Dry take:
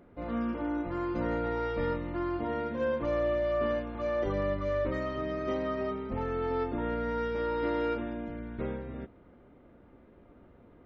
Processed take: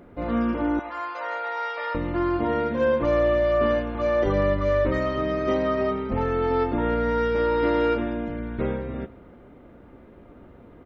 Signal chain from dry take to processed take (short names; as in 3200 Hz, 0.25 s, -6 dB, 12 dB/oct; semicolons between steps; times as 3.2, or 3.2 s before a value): 0.79–1.95 inverse Chebyshev high-pass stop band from 150 Hz, stop band 70 dB; on a send: feedback echo 0.101 s, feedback 50%, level -20 dB; on the sum: gain +8.5 dB